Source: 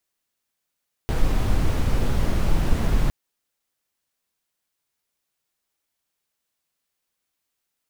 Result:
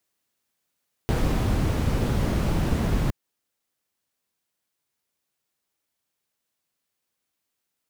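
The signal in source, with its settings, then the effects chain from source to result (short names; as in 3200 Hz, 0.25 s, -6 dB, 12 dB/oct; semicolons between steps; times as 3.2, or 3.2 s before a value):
noise brown, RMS -18.5 dBFS 2.01 s
HPF 100 Hz 6 dB/oct; low shelf 410 Hz +5 dB; vocal rider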